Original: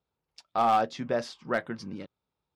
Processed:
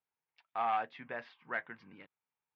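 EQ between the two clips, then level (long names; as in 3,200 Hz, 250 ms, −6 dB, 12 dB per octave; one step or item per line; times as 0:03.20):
loudspeaker in its box 100–2,300 Hz, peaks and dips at 210 Hz −4 dB, 360 Hz −4 dB, 570 Hz −7 dB, 1,300 Hz −6 dB
tilt shelving filter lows −10 dB, about 800 Hz
−7.0 dB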